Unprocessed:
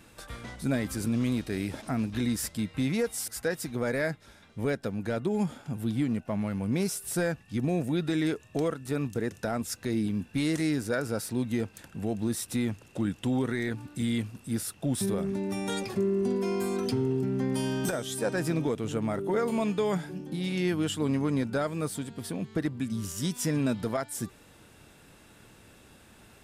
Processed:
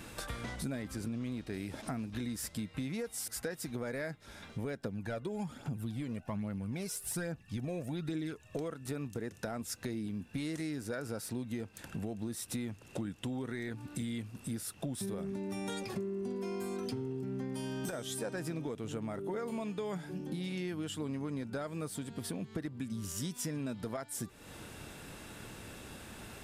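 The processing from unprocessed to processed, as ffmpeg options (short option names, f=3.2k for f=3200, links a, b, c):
-filter_complex "[0:a]asettb=1/sr,asplit=3[a][b][c];[a]atrim=end=0.824[d];[b]atrim=start=0.82:end=1.54,asetpts=PTS-STARTPTS,afade=t=in:d=0.004:c=qsin,afade=t=out:st=0.716:d=0.004:c=qsin,highshelf=f=7.2k:g=-8.5[e];[c]atrim=start=1.536[f];[d][e]acrossfade=d=0.004:c1=hsin:c2=qsin[g];[g][f]acrossfade=d=0.004:c1=qsin:c2=hsin,asettb=1/sr,asplit=3[h][i][j];[h]atrim=end=4.844[k];[i]atrim=start=4.84:end=8.59,asetpts=PTS-STARTPTS,afade=t=in:d=0.004:c=qsin,afade=t=out:st=3.746:d=0.004:c=qsin,aphaser=in_gain=1:out_gain=1:delay=2.1:decay=0.5:speed=1.2:type=triangular[l];[j]atrim=start=8.586[m];[k][l]acrossfade=d=0.004:c1=hsin:c2=qsin[n];[n][m]acrossfade=d=0.004:c1=qsin:c2=hsin,acompressor=threshold=-44dB:ratio=5,volume=6.5dB"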